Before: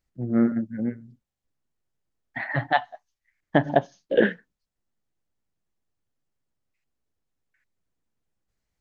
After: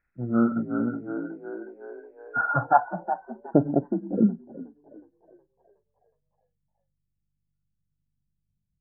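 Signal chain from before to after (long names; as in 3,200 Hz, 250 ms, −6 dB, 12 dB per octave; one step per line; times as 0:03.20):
hearing-aid frequency compression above 1,300 Hz 4 to 1
echo with shifted repeats 367 ms, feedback 58%, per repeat +49 Hz, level −7.5 dB
low-pass filter sweep 1,500 Hz → 160 Hz, 0:02.34–0:04.54
level −1.5 dB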